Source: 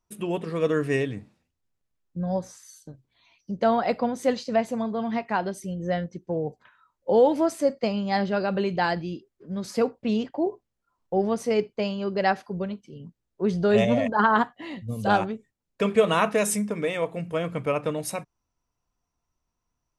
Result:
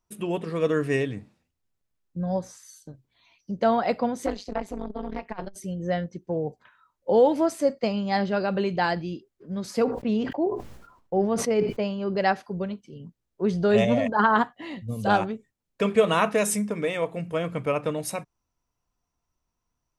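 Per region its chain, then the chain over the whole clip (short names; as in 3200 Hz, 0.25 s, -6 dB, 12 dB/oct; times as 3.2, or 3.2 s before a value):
4.26–5.56 bell 190 Hz +7 dB 0.31 oct + AM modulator 200 Hz, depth 100% + core saturation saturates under 450 Hz
9.84–12.16 high shelf 3200 Hz -8.5 dB + sustainer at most 70 dB/s
whole clip: dry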